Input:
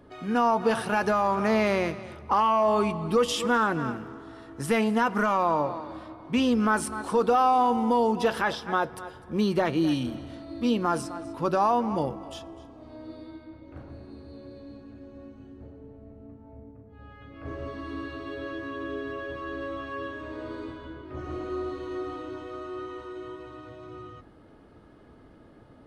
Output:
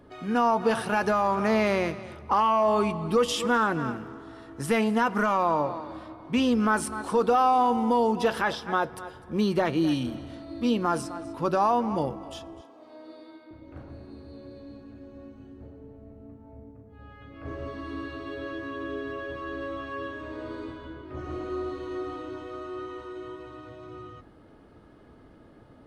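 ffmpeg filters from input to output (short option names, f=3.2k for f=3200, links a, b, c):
-filter_complex "[0:a]asettb=1/sr,asplit=3[a][b][c];[a]atrim=end=12.614[d];[b]atrim=start=12.61:end=13.51,asetpts=PTS-STARTPTS,afade=t=in:d=0.004:c=qsin,afade=t=out:st=0.896:d=0.004:c=qsin,highpass=390[e];[c]atrim=start=13.506[f];[d][e]acrossfade=d=0.004:c1=hsin:c2=qsin[g];[g][f]acrossfade=d=0.004:c1=qsin:c2=hsin"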